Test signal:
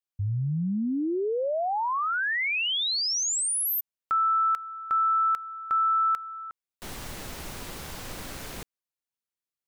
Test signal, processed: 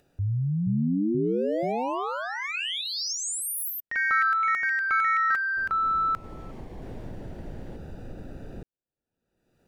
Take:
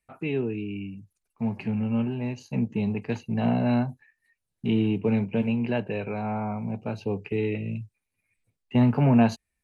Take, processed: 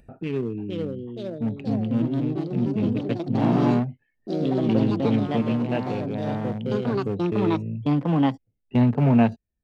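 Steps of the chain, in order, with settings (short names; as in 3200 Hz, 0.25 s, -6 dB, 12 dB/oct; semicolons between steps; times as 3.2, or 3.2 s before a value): Wiener smoothing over 41 samples; echoes that change speed 0.504 s, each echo +3 st, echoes 3; upward compressor, threshold -36 dBFS; gain +1.5 dB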